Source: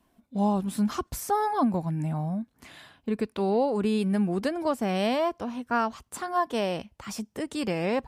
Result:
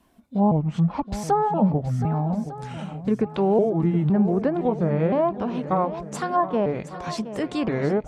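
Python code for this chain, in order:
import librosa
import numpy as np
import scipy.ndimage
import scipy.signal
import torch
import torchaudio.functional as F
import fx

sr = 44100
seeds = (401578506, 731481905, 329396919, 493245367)

y = fx.pitch_trill(x, sr, semitones=-4.0, every_ms=512)
y = fx.env_lowpass_down(y, sr, base_hz=1100.0, full_db=-23.5)
y = fx.echo_swing(y, sr, ms=1202, ratio=1.5, feedback_pct=38, wet_db=-13)
y = y * librosa.db_to_amplitude(5.5)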